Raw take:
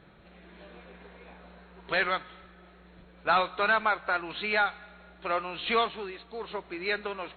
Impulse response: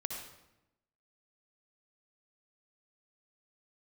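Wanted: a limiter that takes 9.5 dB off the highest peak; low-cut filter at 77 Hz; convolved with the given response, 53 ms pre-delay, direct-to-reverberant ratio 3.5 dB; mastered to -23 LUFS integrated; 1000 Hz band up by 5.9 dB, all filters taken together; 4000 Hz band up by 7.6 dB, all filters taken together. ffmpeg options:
-filter_complex "[0:a]highpass=77,equalizer=f=1k:t=o:g=7.5,equalizer=f=4k:t=o:g=8.5,alimiter=limit=-17dB:level=0:latency=1,asplit=2[a][b];[1:a]atrim=start_sample=2205,adelay=53[c];[b][c]afir=irnorm=-1:irlink=0,volume=-4.5dB[d];[a][d]amix=inputs=2:normalize=0,volume=4.5dB"

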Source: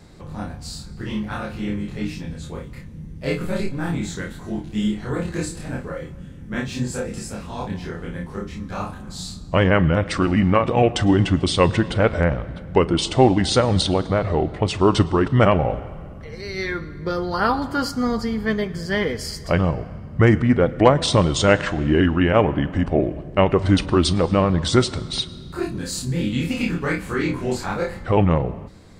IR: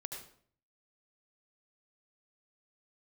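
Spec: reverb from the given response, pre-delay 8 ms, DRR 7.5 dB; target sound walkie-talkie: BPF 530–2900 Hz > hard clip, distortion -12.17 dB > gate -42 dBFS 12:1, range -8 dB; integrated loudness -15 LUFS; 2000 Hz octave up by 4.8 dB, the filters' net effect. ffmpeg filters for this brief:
-filter_complex "[0:a]equalizer=f=2k:t=o:g=7,asplit=2[a][b];[1:a]atrim=start_sample=2205,adelay=8[c];[b][c]afir=irnorm=-1:irlink=0,volume=-6dB[d];[a][d]amix=inputs=2:normalize=0,highpass=530,lowpass=2.9k,asoftclip=type=hard:threshold=-12dB,agate=range=-8dB:threshold=-42dB:ratio=12,volume=9.5dB"

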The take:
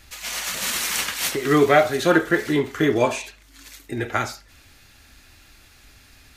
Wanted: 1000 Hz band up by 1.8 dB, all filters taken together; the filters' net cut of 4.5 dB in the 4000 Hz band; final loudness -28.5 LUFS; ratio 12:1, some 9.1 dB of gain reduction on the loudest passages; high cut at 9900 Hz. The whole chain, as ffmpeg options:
-af "lowpass=9.9k,equalizer=f=1k:t=o:g=3,equalizer=f=4k:t=o:g=-6,acompressor=threshold=-19dB:ratio=12,volume=-2.5dB"

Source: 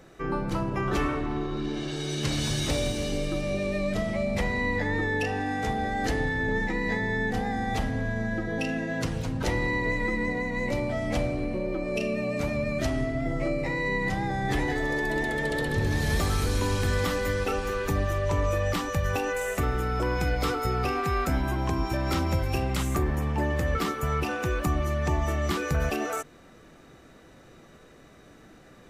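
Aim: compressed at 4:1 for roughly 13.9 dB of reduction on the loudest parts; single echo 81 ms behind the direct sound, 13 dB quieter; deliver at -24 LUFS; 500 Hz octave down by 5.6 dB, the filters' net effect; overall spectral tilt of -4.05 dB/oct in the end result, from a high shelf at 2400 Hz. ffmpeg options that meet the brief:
-af "equalizer=f=500:t=o:g=-7.5,highshelf=f=2.4k:g=8.5,acompressor=threshold=-39dB:ratio=4,aecho=1:1:81:0.224,volume=15dB"

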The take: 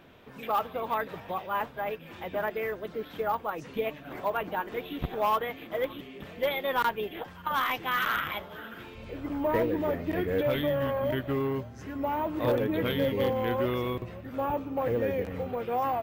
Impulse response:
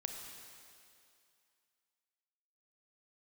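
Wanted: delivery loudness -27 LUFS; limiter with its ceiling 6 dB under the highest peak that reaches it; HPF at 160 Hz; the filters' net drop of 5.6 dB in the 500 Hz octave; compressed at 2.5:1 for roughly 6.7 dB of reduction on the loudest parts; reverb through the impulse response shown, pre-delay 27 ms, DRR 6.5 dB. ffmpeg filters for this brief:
-filter_complex "[0:a]highpass=160,equalizer=f=500:t=o:g=-6.5,acompressor=threshold=-34dB:ratio=2.5,alimiter=level_in=4dB:limit=-24dB:level=0:latency=1,volume=-4dB,asplit=2[a][b];[1:a]atrim=start_sample=2205,adelay=27[c];[b][c]afir=irnorm=-1:irlink=0,volume=-6dB[d];[a][d]amix=inputs=2:normalize=0,volume=11dB"

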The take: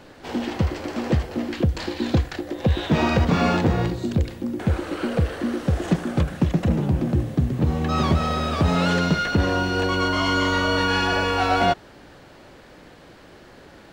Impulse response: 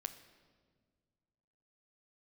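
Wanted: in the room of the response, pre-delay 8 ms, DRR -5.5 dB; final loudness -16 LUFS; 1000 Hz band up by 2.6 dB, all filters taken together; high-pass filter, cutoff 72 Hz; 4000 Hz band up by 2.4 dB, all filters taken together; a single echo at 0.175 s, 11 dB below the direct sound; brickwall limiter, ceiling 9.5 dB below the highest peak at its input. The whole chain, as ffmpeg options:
-filter_complex "[0:a]highpass=72,equalizer=f=1k:t=o:g=3.5,equalizer=f=4k:t=o:g=3,alimiter=limit=-15dB:level=0:latency=1,aecho=1:1:175:0.282,asplit=2[a][b];[1:a]atrim=start_sample=2205,adelay=8[c];[b][c]afir=irnorm=-1:irlink=0,volume=8dB[d];[a][d]amix=inputs=2:normalize=0,volume=2dB"

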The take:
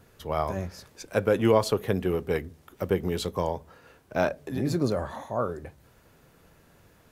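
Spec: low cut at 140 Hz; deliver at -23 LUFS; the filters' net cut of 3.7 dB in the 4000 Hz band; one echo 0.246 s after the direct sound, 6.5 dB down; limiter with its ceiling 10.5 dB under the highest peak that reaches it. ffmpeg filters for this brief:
-af "highpass=140,equalizer=f=4k:t=o:g=-4.5,alimiter=limit=-18dB:level=0:latency=1,aecho=1:1:246:0.473,volume=8dB"

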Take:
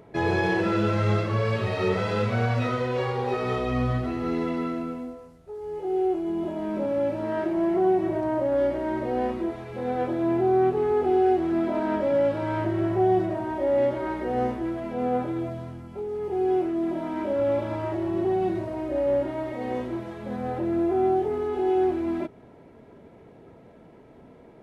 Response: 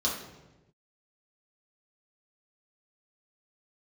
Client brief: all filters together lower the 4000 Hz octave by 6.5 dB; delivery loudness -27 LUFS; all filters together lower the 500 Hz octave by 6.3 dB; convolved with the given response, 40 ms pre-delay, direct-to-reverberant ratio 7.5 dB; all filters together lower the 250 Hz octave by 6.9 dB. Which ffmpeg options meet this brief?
-filter_complex "[0:a]equalizer=f=250:t=o:g=-7.5,equalizer=f=500:t=o:g=-5.5,equalizer=f=4k:t=o:g=-8.5,asplit=2[a][b];[1:a]atrim=start_sample=2205,adelay=40[c];[b][c]afir=irnorm=-1:irlink=0,volume=-15.5dB[d];[a][d]amix=inputs=2:normalize=0,volume=3dB"

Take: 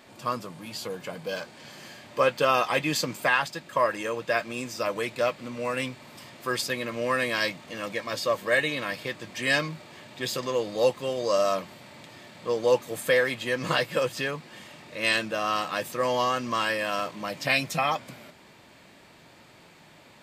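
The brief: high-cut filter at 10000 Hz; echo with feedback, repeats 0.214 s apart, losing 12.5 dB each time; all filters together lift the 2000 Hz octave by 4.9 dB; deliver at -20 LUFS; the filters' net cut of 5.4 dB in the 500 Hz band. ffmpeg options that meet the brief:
-af "lowpass=10k,equalizer=f=500:t=o:g=-6.5,equalizer=f=2k:t=o:g=6.5,aecho=1:1:214|428|642:0.237|0.0569|0.0137,volume=5.5dB"

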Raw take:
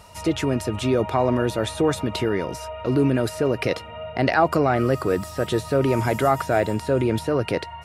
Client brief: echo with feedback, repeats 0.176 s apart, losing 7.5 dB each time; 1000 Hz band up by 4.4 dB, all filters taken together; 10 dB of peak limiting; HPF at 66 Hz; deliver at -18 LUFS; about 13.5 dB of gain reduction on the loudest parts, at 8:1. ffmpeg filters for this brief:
-af "highpass=66,equalizer=f=1k:t=o:g=6,acompressor=threshold=-24dB:ratio=8,alimiter=limit=-22.5dB:level=0:latency=1,aecho=1:1:176|352|528|704|880:0.422|0.177|0.0744|0.0312|0.0131,volume=14dB"

